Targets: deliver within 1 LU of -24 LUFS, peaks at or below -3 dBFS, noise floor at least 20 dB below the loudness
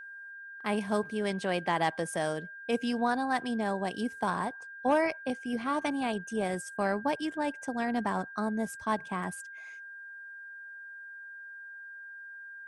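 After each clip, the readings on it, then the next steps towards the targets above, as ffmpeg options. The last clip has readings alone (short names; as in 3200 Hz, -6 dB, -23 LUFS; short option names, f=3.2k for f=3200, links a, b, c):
steady tone 1600 Hz; tone level -43 dBFS; loudness -32.0 LUFS; peak -15.0 dBFS; loudness target -24.0 LUFS
-> -af "bandreject=f=1.6k:w=30"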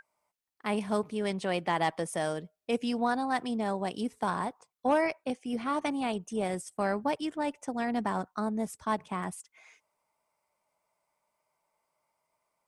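steady tone none; loudness -32.0 LUFS; peak -15.0 dBFS; loudness target -24.0 LUFS
-> -af "volume=8dB"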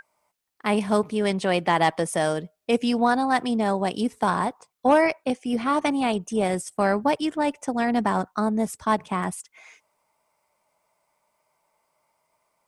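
loudness -24.0 LUFS; peak -7.0 dBFS; noise floor -74 dBFS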